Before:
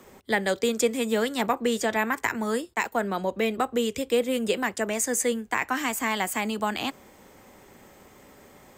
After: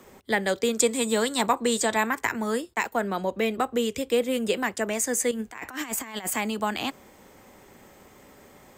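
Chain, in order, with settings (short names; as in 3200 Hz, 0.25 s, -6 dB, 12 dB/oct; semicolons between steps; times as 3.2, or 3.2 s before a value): 0.8–2.07 thirty-one-band EQ 1000 Hz +6 dB, 4000 Hz +8 dB, 8000 Hz +12 dB; 5.31–6.36 negative-ratio compressor -32 dBFS, ratio -0.5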